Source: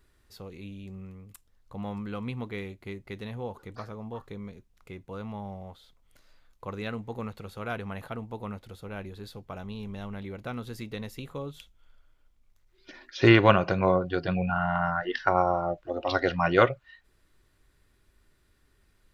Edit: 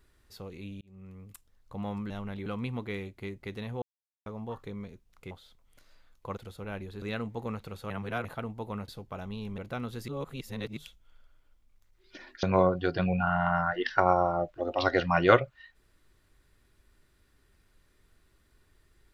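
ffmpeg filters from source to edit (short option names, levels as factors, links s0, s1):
-filter_complex "[0:a]asplit=16[s0][s1][s2][s3][s4][s5][s6][s7][s8][s9][s10][s11][s12][s13][s14][s15];[s0]atrim=end=0.81,asetpts=PTS-STARTPTS,afade=t=out:st=0.806:d=0.004:c=hsin[s16];[s1]atrim=start=0.81:end=2.102,asetpts=PTS-STARTPTS,afade=t=in:d=0.42[s17];[s2]atrim=start=9.958:end=10.322[s18];[s3]atrim=start=2.098:end=3.46,asetpts=PTS-STARTPTS,afade=t=out:st=1.358:d=0.004:c=hsin[s19];[s4]atrim=start=3.46:end=3.9,asetpts=PTS-STARTPTS,volume=0[s20];[s5]atrim=start=3.9:end=4.952,asetpts=PTS-STARTPTS,afade=t=in:d=0.004:c=hsin[s21];[s6]atrim=start=5.688:end=6.752[s22];[s7]atrim=start=8.608:end=9.262[s23];[s8]atrim=start=6.748:end=7.632[s24];[s9]atrim=start=7.628:end=7.982,asetpts=PTS-STARTPTS,areverse[s25];[s10]atrim=start=7.978:end=8.612[s26];[s11]atrim=start=9.258:end=9.962[s27];[s12]atrim=start=10.318:end=10.822[s28];[s13]atrim=start=10.818:end=11.512,asetpts=PTS-STARTPTS,areverse[s29];[s14]atrim=start=11.508:end=13.172[s30];[s15]atrim=start=13.718[s31];[s16][s17]concat=n=2:v=0:a=1[s32];[s32][s18]acrossfade=d=0.004:c1=hsin:c2=hsin[s33];[s19][s20][s21]concat=n=3:v=0:a=1[s34];[s33][s34]acrossfade=d=0.004:c1=hsin:c2=hsin[s35];[s35][s22]acrossfade=d=0.004:c1=hsin:c2=hsin[s36];[s36][s23]acrossfade=d=0.004:c1=hsin:c2=hsin[s37];[s37][s24]acrossfade=d=0.004:c1=hsin:c2=hsin[s38];[s38][s25]acrossfade=d=0.004:c1=hsin:c2=hsin[s39];[s39][s26]acrossfade=d=0.004:c1=hsin:c2=hsin[s40];[s40][s27]acrossfade=d=0.004:c1=hsin:c2=hsin[s41];[s41][s28]acrossfade=d=0.004:c1=hsin:c2=hsin[s42];[s42][s29]acrossfade=d=0.004:c1=hsin:c2=hsin[s43];[s43][s30]acrossfade=d=0.004:c1=hsin:c2=hsin[s44];[s44][s31]acrossfade=d=0.004:c1=hsin:c2=hsin"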